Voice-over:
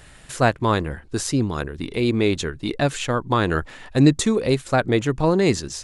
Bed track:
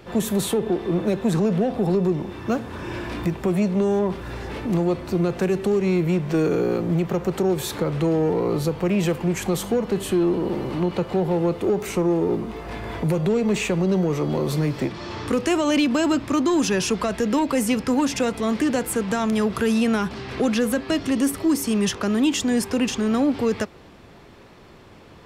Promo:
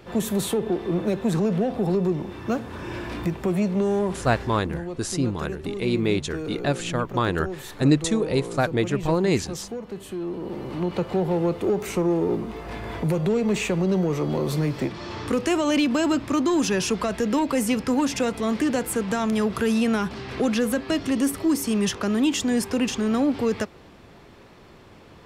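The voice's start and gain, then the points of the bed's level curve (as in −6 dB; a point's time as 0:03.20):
3.85 s, −3.5 dB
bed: 0:04.41 −2 dB
0:04.66 −11.5 dB
0:10.14 −11.5 dB
0:11.00 −1.5 dB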